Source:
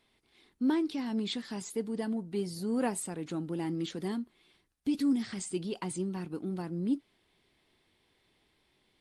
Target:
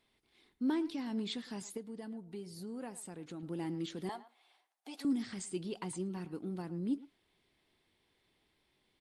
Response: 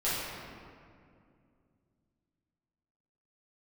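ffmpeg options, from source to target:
-filter_complex "[0:a]asettb=1/sr,asplit=3[a][b][c];[a]atrim=end=1.774[d];[b]atrim=start=1.77:end=3.43,asetpts=PTS-STARTPTS,afade=t=in:d=0.004:c=qsin,afade=t=out:st=1.656:d=0.004:c=qsin,acompressor=threshold=-40dB:ratio=2.5[e];[c]atrim=start=3.426[f];[d][e]acrossfade=d=0.004:c1=hsin:c2=qsin[g];[g][f]acrossfade=d=0.004:c1=qsin:c2=hsin,asettb=1/sr,asplit=3[h][i][j];[h]atrim=end=4.094[k];[i]atrim=start=4.09:end=5.05,asetpts=PTS-STARTPTS,afade=t=in:d=0.004:c=qsin,afade=t=out:st=0.956:d=0.004:c=qsin,highpass=f=750:t=q:w=4.9[l];[j]atrim=start=5.046[m];[k][l]acrossfade=d=0.004:c1=hsin:c2=qsin[n];[n][m]acrossfade=d=0.004:c1=qsin:c2=hsin,asplit=2[o][p];[p]adelay=110,highpass=300,lowpass=3.4k,asoftclip=type=hard:threshold=-27.5dB,volume=-16dB[q];[o][q]amix=inputs=2:normalize=0,volume=-4.5dB"

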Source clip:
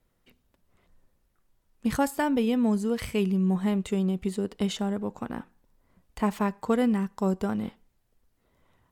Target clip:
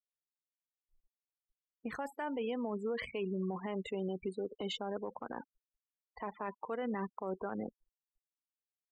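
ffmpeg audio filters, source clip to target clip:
-filter_complex "[0:a]afftfilt=real='re*gte(hypot(re,im),0.0178)':imag='im*gte(hypot(re,im),0.0178)':win_size=1024:overlap=0.75,acrossover=split=350 3400:gain=0.112 1 0.178[a][b][c];[a][b][c]amix=inputs=3:normalize=0,areverse,acompressor=threshold=-36dB:ratio=16,areverse,alimiter=level_in=14.5dB:limit=-24dB:level=0:latency=1:release=154,volume=-14.5dB,volume=9.5dB"

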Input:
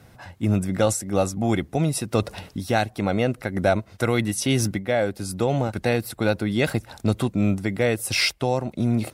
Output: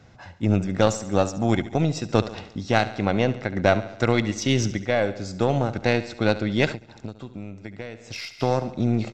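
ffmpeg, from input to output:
-filter_complex "[0:a]aresample=16000,aresample=44100,aeval=exprs='0.531*(cos(1*acos(clip(val(0)/0.531,-1,1)))-cos(1*PI/2))+0.0668*(cos(2*acos(clip(val(0)/0.531,-1,1)))-cos(2*PI/2))+0.0944*(cos(3*acos(clip(val(0)/0.531,-1,1)))-cos(3*PI/2))+0.0299*(cos(4*acos(clip(val(0)/0.531,-1,1)))-cos(4*PI/2))':c=same,aecho=1:1:70|140|210|280|350|420:0.178|0.103|0.0598|0.0347|0.0201|0.0117,asettb=1/sr,asplit=3[a][b][c];[a]atrim=end=6.724[d];[b]atrim=start=6.72:end=8.4,asetpts=PTS-STARTPTS,afade=t=in:d=0.004:c=qsin,afade=t=out:st=1.676:d=0.004:c=qsin,acompressor=threshold=-38dB:ratio=6[e];[c]atrim=start=8.396[f];[d][e]acrossfade=d=0.004:c1=hsin:c2=qsin[g];[g][f]acrossfade=d=0.004:c1=qsin:c2=hsin,volume=5dB"

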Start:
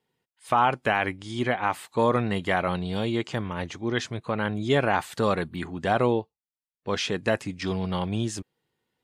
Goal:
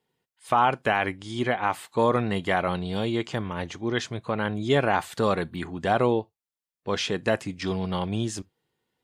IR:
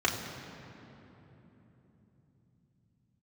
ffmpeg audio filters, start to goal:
-filter_complex "[0:a]asplit=2[a][b];[1:a]atrim=start_sample=2205,atrim=end_sample=3528[c];[b][c]afir=irnorm=-1:irlink=0,volume=-29dB[d];[a][d]amix=inputs=2:normalize=0"

